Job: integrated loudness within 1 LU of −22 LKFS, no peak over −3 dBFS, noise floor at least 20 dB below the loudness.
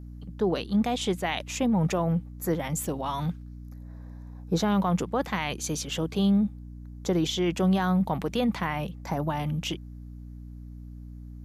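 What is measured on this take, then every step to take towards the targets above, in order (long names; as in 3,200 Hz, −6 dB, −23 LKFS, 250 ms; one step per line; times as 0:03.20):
mains hum 60 Hz; hum harmonics up to 300 Hz; level of the hum −40 dBFS; integrated loudness −27.5 LKFS; sample peak −14.5 dBFS; target loudness −22.0 LKFS
→ mains-hum notches 60/120/180/240/300 Hz
level +5.5 dB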